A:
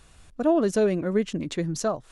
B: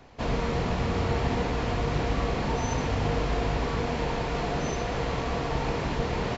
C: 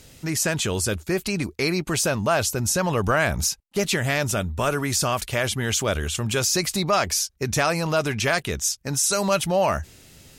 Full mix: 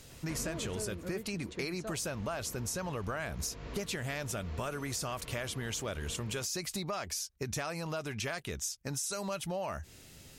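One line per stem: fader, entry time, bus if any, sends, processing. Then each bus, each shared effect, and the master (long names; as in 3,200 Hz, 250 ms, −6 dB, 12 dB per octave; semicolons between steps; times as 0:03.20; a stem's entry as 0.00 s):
−11.5 dB, 0.00 s, no send, no processing
0:00.79 −3.5 dB → 0:01.04 −13.5 dB → 0:01.91 −13.5 dB → 0:02.14 −4 dB, 0.10 s, no send, parametric band 790 Hz −14.5 dB 0.25 octaves; automatic ducking −10 dB, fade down 1.50 s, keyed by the third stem
−5.0 dB, 0.00 s, no send, no processing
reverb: not used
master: downward compressor 6 to 1, threshold −34 dBFS, peak gain reduction 12.5 dB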